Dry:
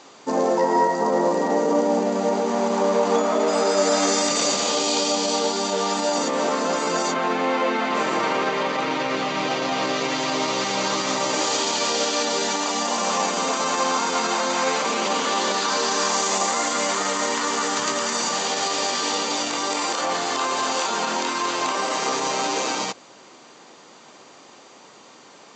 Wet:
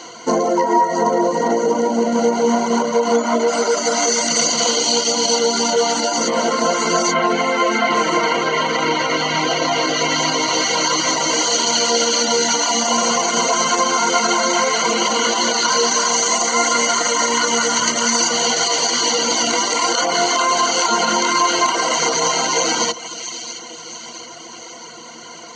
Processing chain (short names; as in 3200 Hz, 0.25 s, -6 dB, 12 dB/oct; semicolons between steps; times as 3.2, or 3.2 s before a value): high shelf 7700 Hz +6 dB; on a send: split-band echo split 2400 Hz, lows 0.156 s, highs 0.67 s, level -13 dB; on the sum: compressor, threshold -23 dBFS, peak gain reduction 9 dB; reverb removal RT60 0.67 s; ripple EQ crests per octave 1.9, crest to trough 16 dB; gain +8.5 dB